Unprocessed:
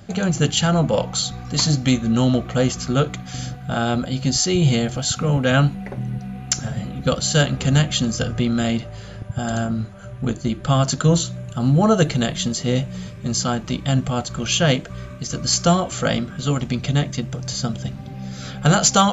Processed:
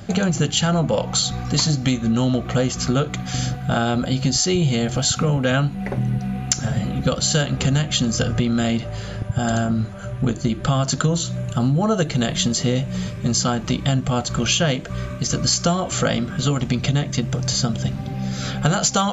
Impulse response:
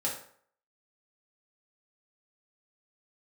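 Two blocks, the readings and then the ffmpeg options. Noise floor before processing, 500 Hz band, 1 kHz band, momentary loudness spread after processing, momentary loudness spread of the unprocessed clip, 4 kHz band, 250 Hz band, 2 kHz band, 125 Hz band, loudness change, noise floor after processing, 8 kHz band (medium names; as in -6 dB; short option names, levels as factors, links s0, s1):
-36 dBFS, -1.0 dB, -1.5 dB, 6 LU, 12 LU, +0.5 dB, 0.0 dB, -0.5 dB, 0.0 dB, -0.5 dB, -31 dBFS, no reading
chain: -af "acompressor=threshold=0.0794:ratio=6,volume=2"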